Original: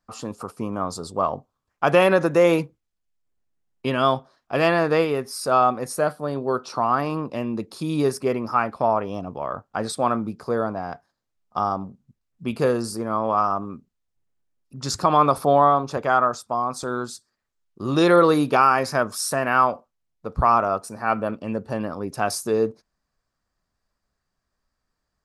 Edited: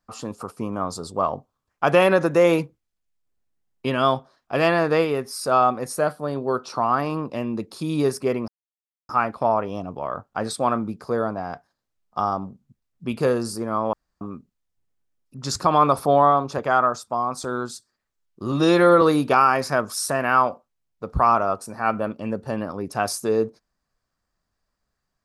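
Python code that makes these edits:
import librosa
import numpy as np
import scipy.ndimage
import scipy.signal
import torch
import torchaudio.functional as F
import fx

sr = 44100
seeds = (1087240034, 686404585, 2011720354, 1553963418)

y = fx.edit(x, sr, fx.insert_silence(at_s=8.48, length_s=0.61),
    fx.room_tone_fill(start_s=13.32, length_s=0.28),
    fx.stretch_span(start_s=17.91, length_s=0.33, factor=1.5), tone=tone)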